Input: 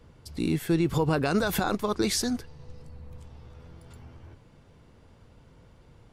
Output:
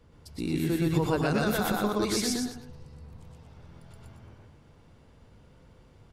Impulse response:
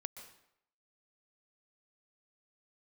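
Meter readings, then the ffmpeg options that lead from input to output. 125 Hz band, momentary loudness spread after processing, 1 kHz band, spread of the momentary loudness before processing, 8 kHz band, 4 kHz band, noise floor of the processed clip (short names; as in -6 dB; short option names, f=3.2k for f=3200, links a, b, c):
-0.5 dB, 10 LU, -1.0 dB, 9 LU, -1.0 dB, -1.0 dB, -57 dBFS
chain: -filter_complex "[0:a]aecho=1:1:122.4|239.1:1|0.355,asplit=2[a][b];[1:a]atrim=start_sample=2205,atrim=end_sample=3087,adelay=103[c];[b][c]afir=irnorm=-1:irlink=0,volume=-5.5dB[d];[a][d]amix=inputs=2:normalize=0,volume=-4.5dB"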